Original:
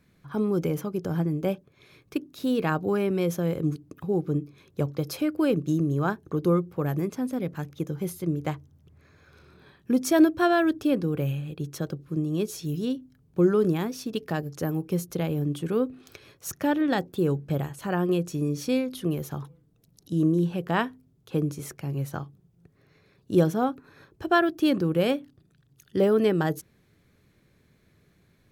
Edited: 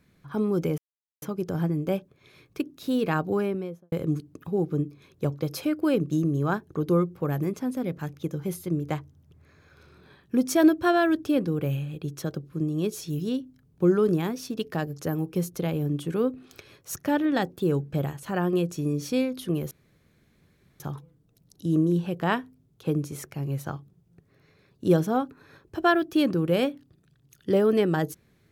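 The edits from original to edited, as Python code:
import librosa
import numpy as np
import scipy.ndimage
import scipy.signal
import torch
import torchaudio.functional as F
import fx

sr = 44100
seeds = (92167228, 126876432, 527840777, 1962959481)

y = fx.studio_fade_out(x, sr, start_s=2.86, length_s=0.62)
y = fx.edit(y, sr, fx.insert_silence(at_s=0.78, length_s=0.44),
    fx.insert_room_tone(at_s=19.27, length_s=1.09), tone=tone)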